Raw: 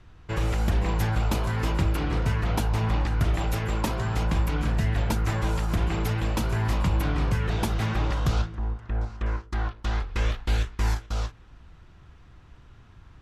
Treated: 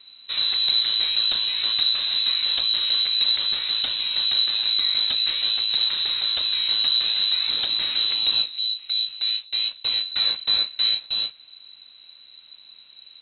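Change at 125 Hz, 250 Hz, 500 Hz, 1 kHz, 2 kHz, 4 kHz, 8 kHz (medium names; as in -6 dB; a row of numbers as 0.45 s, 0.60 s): under -30 dB, under -20 dB, under -10 dB, -10.5 dB, +0.5 dB, +23.5 dB, under -40 dB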